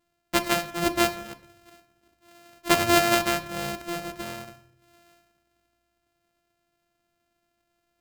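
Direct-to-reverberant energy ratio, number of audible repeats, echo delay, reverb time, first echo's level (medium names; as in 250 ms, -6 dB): 10.0 dB, no echo, no echo, 0.65 s, no echo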